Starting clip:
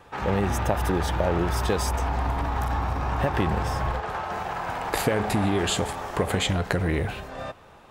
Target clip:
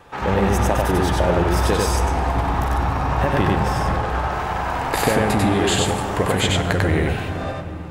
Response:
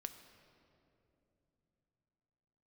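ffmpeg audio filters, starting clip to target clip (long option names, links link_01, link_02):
-filter_complex "[0:a]asplit=2[link_01][link_02];[1:a]atrim=start_sample=2205,asetrate=23814,aresample=44100,adelay=95[link_03];[link_02][link_03]afir=irnorm=-1:irlink=0,volume=0dB[link_04];[link_01][link_04]amix=inputs=2:normalize=0,volume=3.5dB"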